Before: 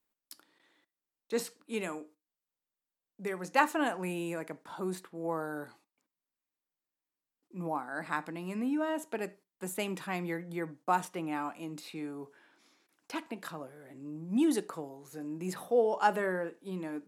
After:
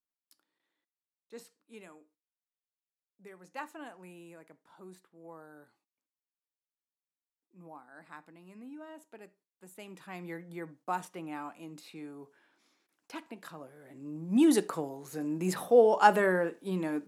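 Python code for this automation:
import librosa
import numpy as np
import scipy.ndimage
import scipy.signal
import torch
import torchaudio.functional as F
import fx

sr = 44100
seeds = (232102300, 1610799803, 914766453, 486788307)

y = fx.gain(x, sr, db=fx.line((9.71, -15.0), (10.35, -5.0), (13.48, -5.0), (14.59, 5.5)))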